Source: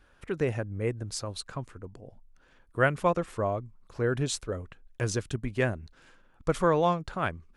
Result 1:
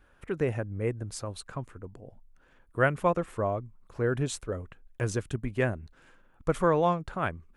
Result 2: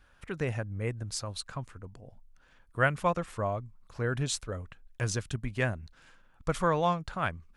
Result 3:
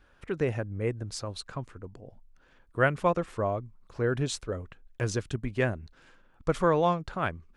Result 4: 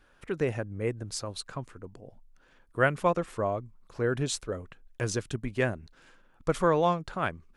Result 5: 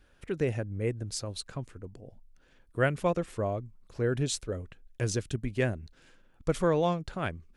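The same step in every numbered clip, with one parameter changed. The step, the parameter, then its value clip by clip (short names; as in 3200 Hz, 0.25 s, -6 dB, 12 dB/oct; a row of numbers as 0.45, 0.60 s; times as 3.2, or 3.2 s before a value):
bell, frequency: 4800, 370, 13000, 63, 1100 Hz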